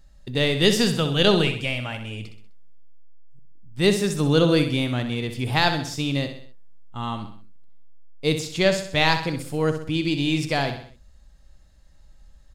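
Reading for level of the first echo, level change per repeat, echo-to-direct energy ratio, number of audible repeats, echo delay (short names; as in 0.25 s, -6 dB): -9.0 dB, -6.5 dB, -8.0 dB, 4, 64 ms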